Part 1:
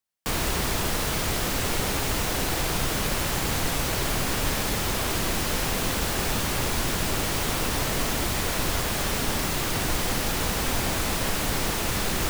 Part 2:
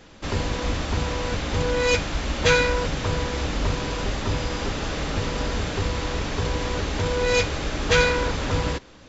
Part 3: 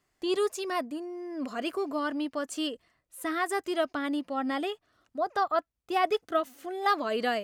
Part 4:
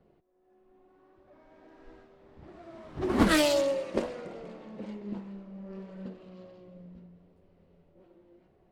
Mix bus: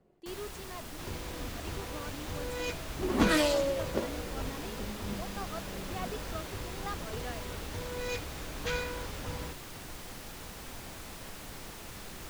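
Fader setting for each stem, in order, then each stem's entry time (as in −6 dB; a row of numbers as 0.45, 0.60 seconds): −18.5, −15.5, −15.0, −3.0 decibels; 0.00, 0.75, 0.00, 0.00 seconds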